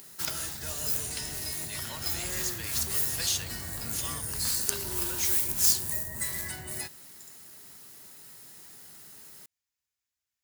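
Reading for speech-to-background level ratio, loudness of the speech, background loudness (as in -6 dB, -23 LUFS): -5.0 dB, -34.0 LUFS, -29.0 LUFS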